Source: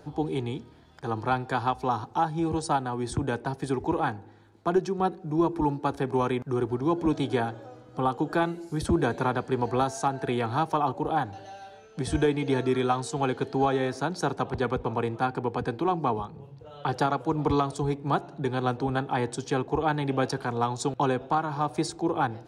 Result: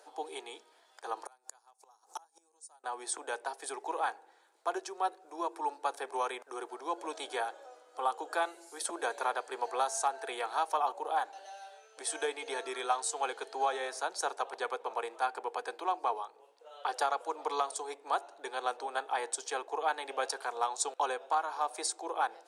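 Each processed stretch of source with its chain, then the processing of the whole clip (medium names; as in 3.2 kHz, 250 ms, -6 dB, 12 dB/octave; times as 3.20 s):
1.25–2.84 s: resonant high shelf 4.6 kHz +13 dB, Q 1.5 + inverted gate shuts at -22 dBFS, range -32 dB
whole clip: inverse Chebyshev high-pass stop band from 150 Hz, stop band 60 dB; peaking EQ 8.9 kHz +11 dB 0.89 oct; trim -4 dB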